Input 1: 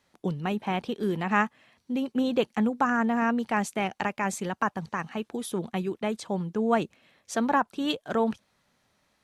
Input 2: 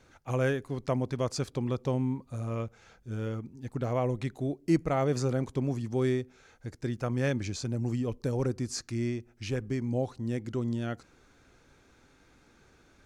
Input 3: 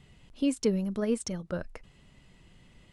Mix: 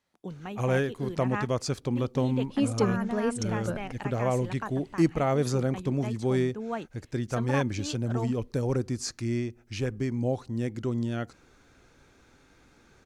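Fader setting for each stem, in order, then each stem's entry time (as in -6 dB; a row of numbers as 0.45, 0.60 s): -9.5, +2.0, +0.5 dB; 0.00, 0.30, 2.15 s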